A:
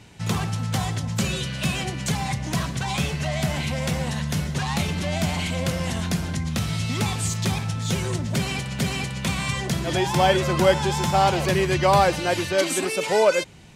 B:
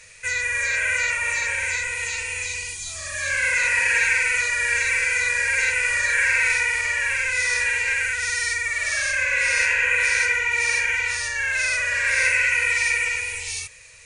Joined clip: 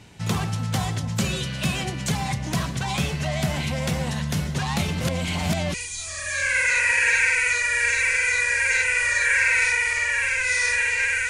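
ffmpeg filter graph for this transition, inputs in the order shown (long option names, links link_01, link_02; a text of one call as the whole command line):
ffmpeg -i cue0.wav -i cue1.wav -filter_complex "[0:a]apad=whole_dur=11.29,atrim=end=11.29,asplit=2[link_01][link_02];[link_01]atrim=end=5.012[link_03];[link_02]atrim=start=5.008:end=5.742,asetpts=PTS-STARTPTS,areverse[link_04];[1:a]atrim=start=2.618:end=8.17[link_05];[link_03][link_04]acrossfade=duration=0.004:curve1=hsin:curve2=hsin[link_06];[link_06][link_05]acrossfade=duration=0.004:curve1=hsin:curve2=hsin" out.wav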